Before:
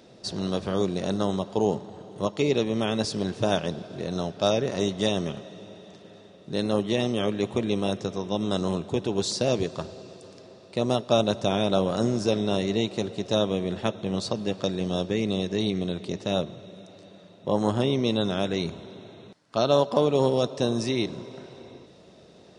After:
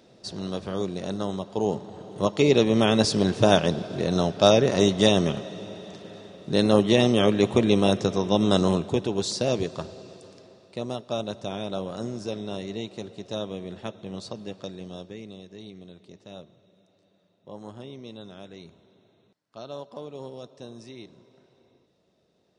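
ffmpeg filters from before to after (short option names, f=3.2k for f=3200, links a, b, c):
-af "volume=6dB,afade=t=in:st=1.49:d=1.29:silence=0.334965,afade=t=out:st=8.57:d=0.57:silence=0.473151,afade=t=out:st=10.15:d=0.78:silence=0.421697,afade=t=out:st=14.4:d=1:silence=0.354813"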